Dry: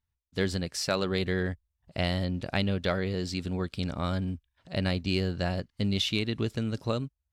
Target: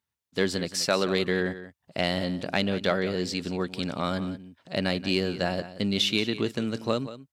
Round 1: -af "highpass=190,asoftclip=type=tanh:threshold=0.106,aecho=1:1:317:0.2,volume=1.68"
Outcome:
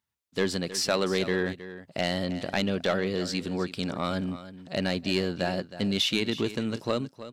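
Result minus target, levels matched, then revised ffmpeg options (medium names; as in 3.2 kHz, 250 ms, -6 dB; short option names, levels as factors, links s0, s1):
echo 138 ms late; saturation: distortion +11 dB
-af "highpass=190,asoftclip=type=tanh:threshold=0.251,aecho=1:1:179:0.2,volume=1.68"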